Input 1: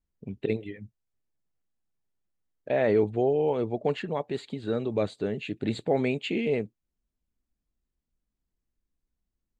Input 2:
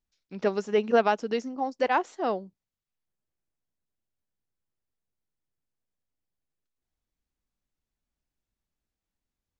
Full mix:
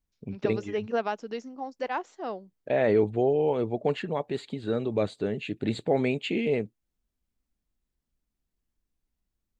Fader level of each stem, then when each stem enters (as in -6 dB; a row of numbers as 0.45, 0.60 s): +0.5, -6.5 dB; 0.00, 0.00 s